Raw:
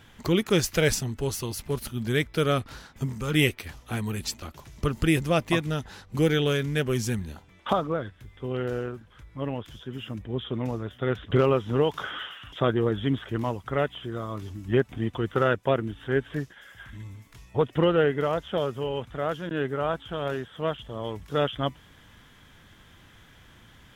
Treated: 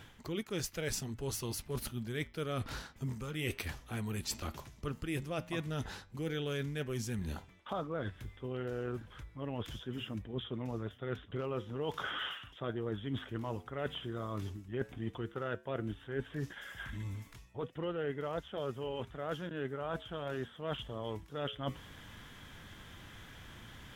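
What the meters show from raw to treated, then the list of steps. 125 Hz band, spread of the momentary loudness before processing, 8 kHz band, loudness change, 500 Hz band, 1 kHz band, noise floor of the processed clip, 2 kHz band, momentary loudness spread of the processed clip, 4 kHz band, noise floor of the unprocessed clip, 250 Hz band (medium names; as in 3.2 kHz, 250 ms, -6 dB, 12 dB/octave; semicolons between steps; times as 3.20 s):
-11.0 dB, 14 LU, -8.5 dB, -12.0 dB, -13.0 dB, -12.0 dB, -58 dBFS, -11.0 dB, 8 LU, -9.5 dB, -54 dBFS, -12.0 dB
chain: reverse; compression 6:1, threshold -37 dBFS, peak gain reduction 19 dB; reverse; flange 0.11 Hz, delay 2.1 ms, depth 8.3 ms, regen -87%; trim +6 dB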